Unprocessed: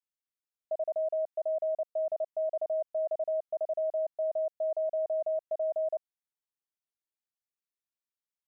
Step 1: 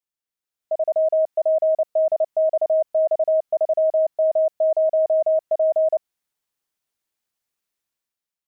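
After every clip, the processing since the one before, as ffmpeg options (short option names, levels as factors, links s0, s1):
-af "dynaudnorm=f=190:g=7:m=3.16,volume=1.26"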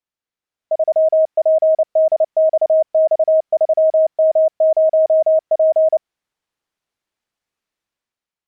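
-af "aemphasis=mode=reproduction:type=50fm,volume=1.78"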